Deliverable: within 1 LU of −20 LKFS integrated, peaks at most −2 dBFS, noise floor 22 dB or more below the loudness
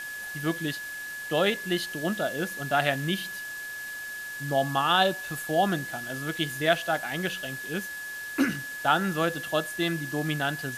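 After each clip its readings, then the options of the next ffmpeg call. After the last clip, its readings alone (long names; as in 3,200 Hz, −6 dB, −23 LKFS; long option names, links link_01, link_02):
interfering tone 1,700 Hz; level of the tone −35 dBFS; background noise floor −37 dBFS; target noise floor −51 dBFS; integrated loudness −28.5 LKFS; sample peak −8.0 dBFS; target loudness −20.0 LKFS
→ -af "bandreject=frequency=1700:width=30"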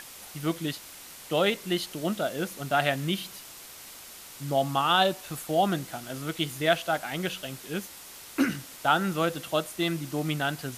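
interfering tone none found; background noise floor −46 dBFS; target noise floor −51 dBFS
→ -af "afftdn=noise_reduction=6:noise_floor=-46"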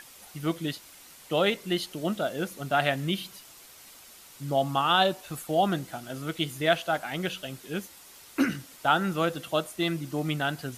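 background noise floor −51 dBFS; integrated loudness −28.5 LKFS; sample peak −8.5 dBFS; target loudness −20.0 LKFS
→ -af "volume=8.5dB,alimiter=limit=-2dB:level=0:latency=1"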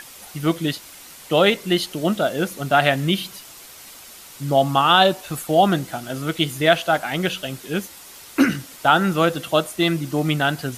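integrated loudness −20.0 LKFS; sample peak −2.0 dBFS; background noise floor −42 dBFS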